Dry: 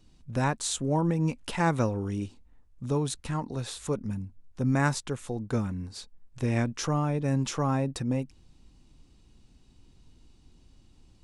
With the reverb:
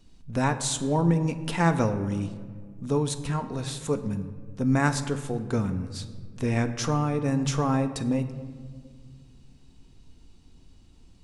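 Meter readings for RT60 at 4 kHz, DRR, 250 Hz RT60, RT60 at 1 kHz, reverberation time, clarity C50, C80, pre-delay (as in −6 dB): 0.95 s, 8.0 dB, 2.6 s, 1.6 s, 1.8 s, 12.0 dB, 13.0 dB, 4 ms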